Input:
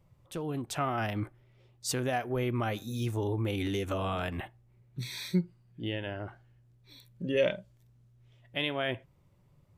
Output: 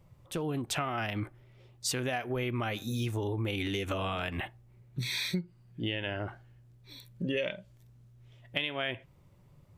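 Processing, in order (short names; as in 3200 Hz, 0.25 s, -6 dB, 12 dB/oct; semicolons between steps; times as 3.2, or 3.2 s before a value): dynamic EQ 2600 Hz, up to +7 dB, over -49 dBFS, Q 0.98; compressor 6:1, threshold -34 dBFS, peak gain reduction 13 dB; gain +4.5 dB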